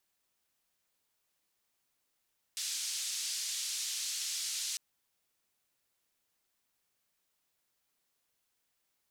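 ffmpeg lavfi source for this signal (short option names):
-f lavfi -i "anoisesrc=c=white:d=2.2:r=44100:seed=1,highpass=f=4500,lowpass=f=6300,volume=-22.4dB"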